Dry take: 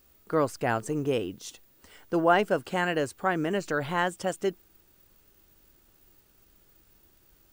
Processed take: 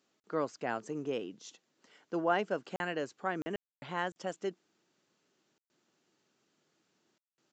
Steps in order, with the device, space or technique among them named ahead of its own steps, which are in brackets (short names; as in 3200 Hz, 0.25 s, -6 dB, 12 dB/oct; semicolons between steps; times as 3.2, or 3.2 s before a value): call with lost packets (HPF 160 Hz 24 dB/oct; downsampling 16000 Hz; packet loss bursts); gain -8 dB